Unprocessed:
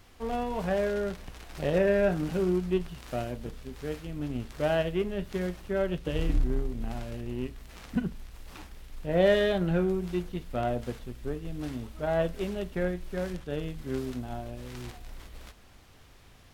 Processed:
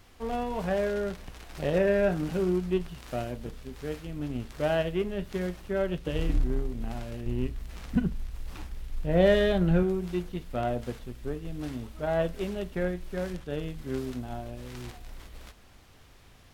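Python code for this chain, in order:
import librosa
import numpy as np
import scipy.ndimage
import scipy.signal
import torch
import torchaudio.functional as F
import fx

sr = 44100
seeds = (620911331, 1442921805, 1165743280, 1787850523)

y = fx.low_shelf(x, sr, hz=150.0, db=9.5, at=(7.26, 9.83))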